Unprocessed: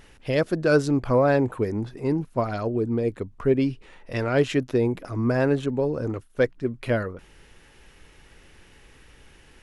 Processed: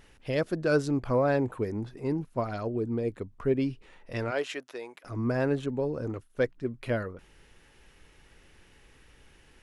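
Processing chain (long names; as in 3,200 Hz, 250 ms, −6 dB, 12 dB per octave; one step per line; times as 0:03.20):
0:04.30–0:05.04: high-pass filter 450 Hz → 1,100 Hz 12 dB per octave
level −5.5 dB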